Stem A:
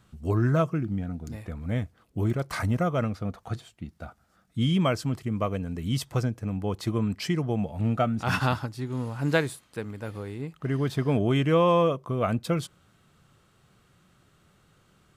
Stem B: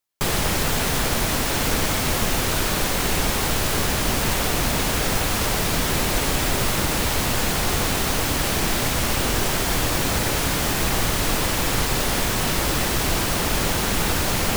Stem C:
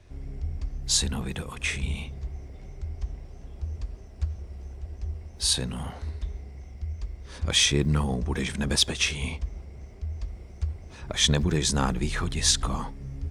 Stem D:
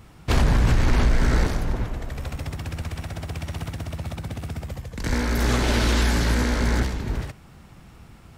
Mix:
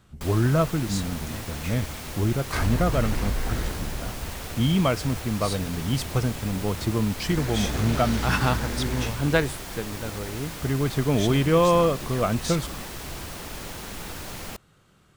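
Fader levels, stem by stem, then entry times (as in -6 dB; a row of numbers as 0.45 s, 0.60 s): +2.0 dB, -14.5 dB, -11.5 dB, -9.0 dB; 0.00 s, 0.00 s, 0.00 s, 2.25 s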